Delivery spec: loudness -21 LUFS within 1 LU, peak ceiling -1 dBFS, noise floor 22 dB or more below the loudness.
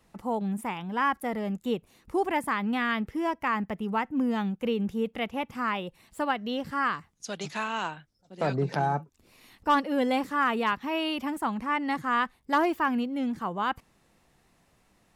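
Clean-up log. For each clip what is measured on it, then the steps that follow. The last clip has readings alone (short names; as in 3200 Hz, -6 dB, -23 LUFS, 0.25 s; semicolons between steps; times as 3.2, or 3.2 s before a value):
loudness -29.0 LUFS; peak -15.5 dBFS; loudness target -21.0 LUFS
-> gain +8 dB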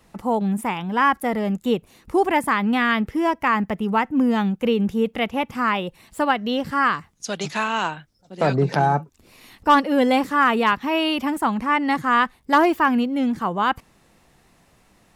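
loudness -21.0 LUFS; peak -7.5 dBFS; noise floor -59 dBFS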